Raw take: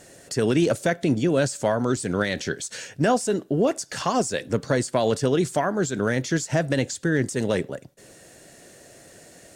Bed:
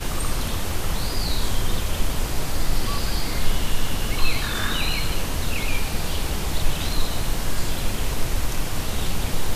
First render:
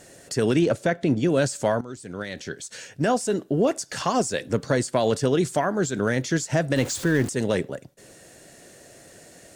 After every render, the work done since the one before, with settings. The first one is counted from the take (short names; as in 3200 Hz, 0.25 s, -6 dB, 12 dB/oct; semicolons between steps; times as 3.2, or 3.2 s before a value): 0.59–1.23 LPF 3200 Hz 6 dB/oct; 1.81–3.44 fade in, from -16.5 dB; 6.76–7.29 zero-crossing step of -31 dBFS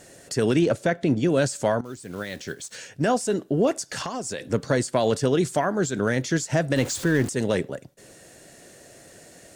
1.85–2.77 block floating point 5-bit; 3.89–4.52 compressor 10:1, threshold -26 dBFS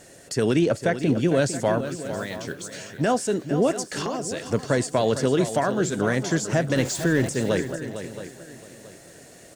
echo 0.453 s -11 dB; lo-fi delay 0.674 s, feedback 35%, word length 8-bit, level -14 dB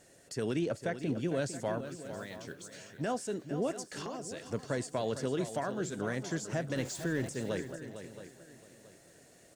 gain -12 dB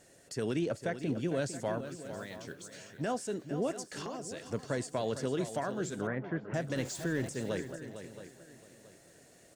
6.07–6.54 LPF 2200 Hz 24 dB/oct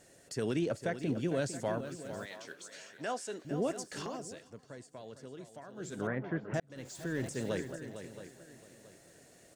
2.25–3.45 weighting filter A; 4.15–6.07 dip -14.5 dB, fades 0.35 s; 6.6–7.35 fade in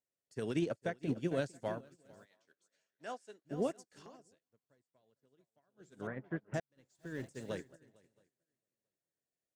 upward expander 2.5:1, over -55 dBFS